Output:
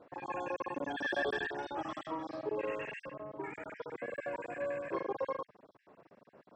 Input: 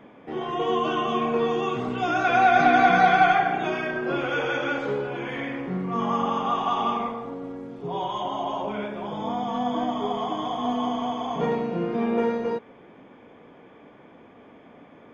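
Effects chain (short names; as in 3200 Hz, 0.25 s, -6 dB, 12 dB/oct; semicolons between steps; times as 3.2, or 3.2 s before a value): random spectral dropouts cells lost 35%; wide varispeed 2.31×; band-pass 150 Hz, Q 1.2; gain +5.5 dB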